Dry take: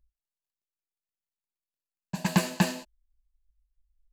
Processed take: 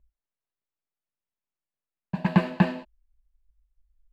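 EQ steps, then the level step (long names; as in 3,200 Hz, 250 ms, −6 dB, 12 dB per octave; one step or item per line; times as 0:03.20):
high-frequency loss of the air 450 metres
+4.5 dB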